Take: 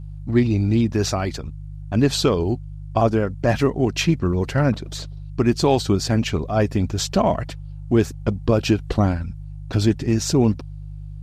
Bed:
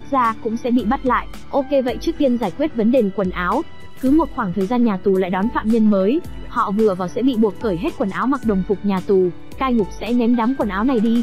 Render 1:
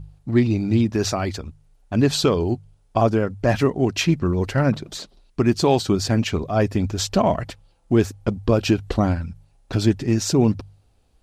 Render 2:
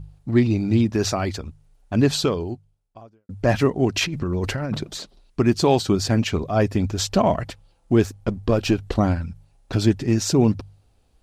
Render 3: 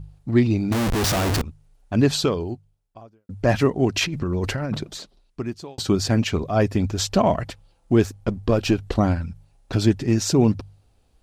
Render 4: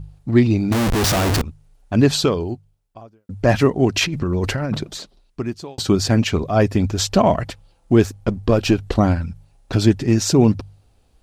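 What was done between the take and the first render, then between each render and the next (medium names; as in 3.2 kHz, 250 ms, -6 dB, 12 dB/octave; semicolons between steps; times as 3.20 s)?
de-hum 50 Hz, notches 3
2.08–3.29 s: fade out quadratic; 3.94–4.85 s: compressor with a negative ratio -24 dBFS; 8.03–8.97 s: partial rectifier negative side -3 dB
0.72–1.42 s: Schmitt trigger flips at -34 dBFS; 4.69–5.78 s: fade out
trim +3.5 dB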